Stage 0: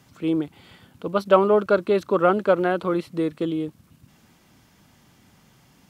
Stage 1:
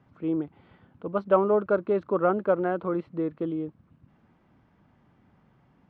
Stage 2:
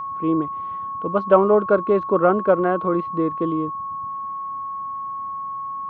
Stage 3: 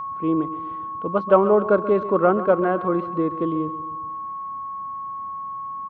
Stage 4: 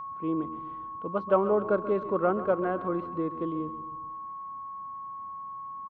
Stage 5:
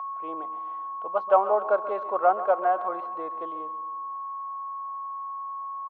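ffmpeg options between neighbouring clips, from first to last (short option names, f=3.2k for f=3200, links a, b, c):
-af "lowpass=1.5k,volume=-4.5dB"
-af "aeval=exprs='val(0)+0.0224*sin(2*PI*1100*n/s)':c=same,volume=6.5dB"
-af "aecho=1:1:134|268|402|536|670:0.188|0.0998|0.0529|0.028|0.0149,volume=-1dB"
-filter_complex "[0:a]asplit=4[a][b][c][d];[b]adelay=164,afreqshift=-89,volume=-21dB[e];[c]adelay=328,afreqshift=-178,volume=-28.7dB[f];[d]adelay=492,afreqshift=-267,volume=-36.5dB[g];[a][e][f][g]amix=inputs=4:normalize=0,volume=-8dB"
-af "highpass=f=730:t=q:w=4.1"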